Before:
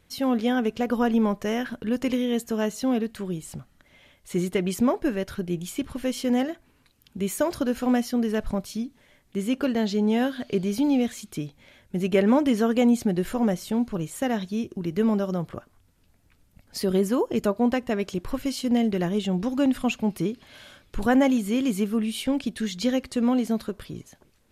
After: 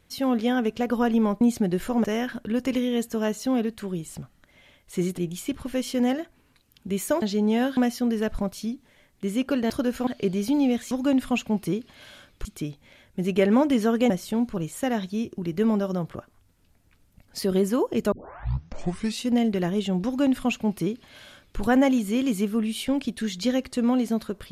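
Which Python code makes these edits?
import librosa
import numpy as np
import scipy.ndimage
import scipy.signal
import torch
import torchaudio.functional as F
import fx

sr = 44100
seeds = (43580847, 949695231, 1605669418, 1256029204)

y = fx.edit(x, sr, fx.cut(start_s=4.55, length_s=0.93),
    fx.swap(start_s=7.52, length_s=0.37, other_s=9.82, other_length_s=0.55),
    fx.move(start_s=12.86, length_s=0.63, to_s=1.41),
    fx.tape_start(start_s=17.51, length_s=1.17),
    fx.duplicate(start_s=19.44, length_s=1.54, to_s=11.21), tone=tone)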